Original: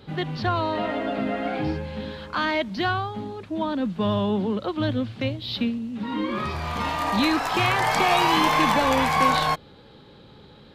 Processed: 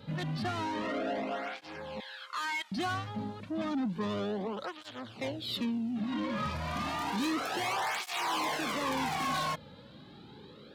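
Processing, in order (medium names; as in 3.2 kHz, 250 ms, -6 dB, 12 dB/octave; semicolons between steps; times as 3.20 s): 2.00–2.72 s: high-pass 960 Hz 24 dB/octave; saturation -28 dBFS, distortion -6 dB; cancelling through-zero flanger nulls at 0.31 Hz, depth 2.8 ms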